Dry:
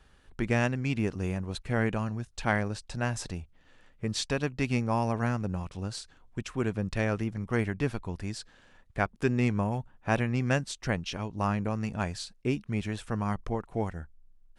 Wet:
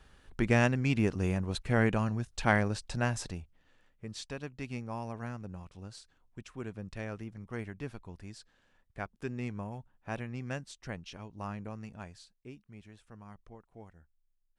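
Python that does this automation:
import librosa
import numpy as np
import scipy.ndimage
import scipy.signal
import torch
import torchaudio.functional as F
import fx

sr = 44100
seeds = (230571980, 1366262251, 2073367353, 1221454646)

y = fx.gain(x, sr, db=fx.line((2.94, 1.0), (4.04, -11.0), (11.73, -11.0), (12.58, -20.0)))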